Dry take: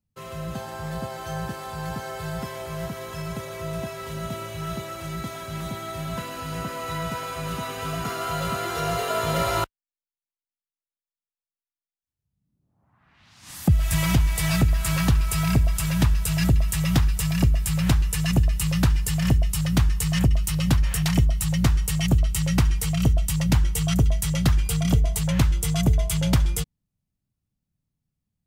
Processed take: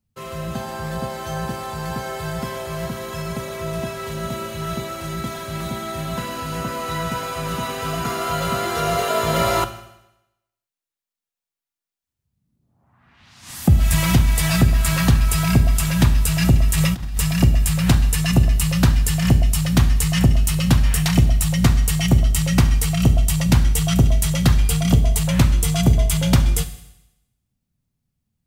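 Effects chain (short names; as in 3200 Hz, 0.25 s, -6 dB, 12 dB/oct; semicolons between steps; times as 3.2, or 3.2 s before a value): reverb RT60 0.90 s, pre-delay 4 ms, DRR 9 dB; 16.7–17.21 negative-ratio compressor -24 dBFS, ratio -0.5; gain +4.5 dB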